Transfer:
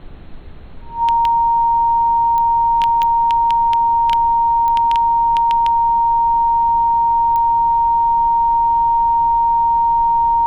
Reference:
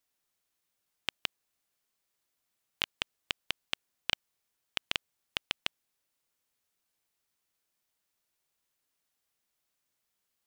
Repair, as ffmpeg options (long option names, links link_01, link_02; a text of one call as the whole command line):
ffmpeg -i in.wav -filter_complex "[0:a]adeclick=threshold=4,bandreject=frequency=930:width=30,asplit=3[link_01][link_02][link_03];[link_01]afade=type=out:start_time=4.49:duration=0.02[link_04];[link_02]highpass=frequency=140:width=0.5412,highpass=frequency=140:width=1.3066,afade=type=in:start_time=4.49:duration=0.02,afade=type=out:start_time=4.61:duration=0.02[link_05];[link_03]afade=type=in:start_time=4.61:duration=0.02[link_06];[link_04][link_05][link_06]amix=inputs=3:normalize=0,asplit=3[link_07][link_08][link_09];[link_07]afade=type=out:start_time=7.54:duration=0.02[link_10];[link_08]highpass=frequency=140:width=0.5412,highpass=frequency=140:width=1.3066,afade=type=in:start_time=7.54:duration=0.02,afade=type=out:start_time=7.66:duration=0.02[link_11];[link_09]afade=type=in:start_time=7.66:duration=0.02[link_12];[link_10][link_11][link_12]amix=inputs=3:normalize=0,afftdn=noise_reduction=30:noise_floor=-20" out.wav